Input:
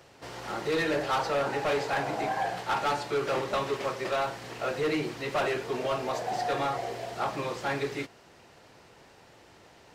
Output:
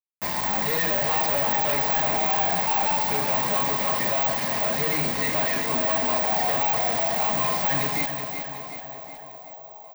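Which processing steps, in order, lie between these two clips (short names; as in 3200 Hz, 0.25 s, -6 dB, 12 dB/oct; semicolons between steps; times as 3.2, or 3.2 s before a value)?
tone controls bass -3 dB, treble -6 dB; comb 4.8 ms, depth 51%; in parallel at -1 dB: compressor, threshold -37 dBFS, peak gain reduction 13.5 dB; on the sum: fixed phaser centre 2000 Hz, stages 8; small resonant body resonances 210/360/1000 Hz, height 6 dB, ringing for 20 ms; companded quantiser 2-bit; on a send: narrowing echo 0.62 s, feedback 79%, band-pass 690 Hz, level -16 dB; on the sum: careless resampling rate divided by 2×, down filtered, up zero stuff; lo-fi delay 0.372 s, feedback 55%, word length 9-bit, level -7.5 dB; gain -1 dB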